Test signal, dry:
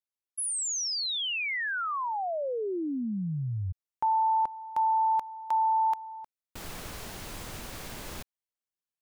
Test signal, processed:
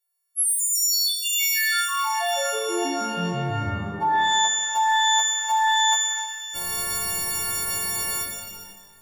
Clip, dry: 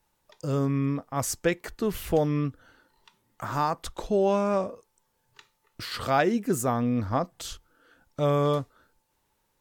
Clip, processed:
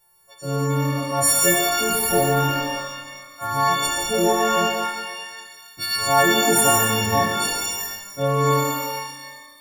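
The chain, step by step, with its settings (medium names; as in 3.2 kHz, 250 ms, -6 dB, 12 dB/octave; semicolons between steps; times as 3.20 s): partials quantised in pitch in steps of 4 st; pitch-shifted reverb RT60 1.3 s, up +12 st, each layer -2 dB, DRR 0 dB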